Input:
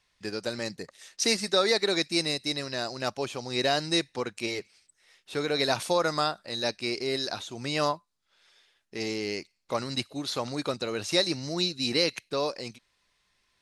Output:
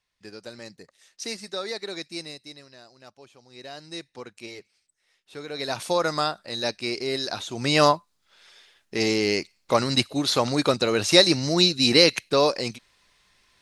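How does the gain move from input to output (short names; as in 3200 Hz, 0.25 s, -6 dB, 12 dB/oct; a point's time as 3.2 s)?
2.17 s -8 dB
2.86 s -18 dB
3.48 s -18 dB
4.15 s -8 dB
5.45 s -8 dB
5.95 s +2 dB
7.27 s +2 dB
7.71 s +9 dB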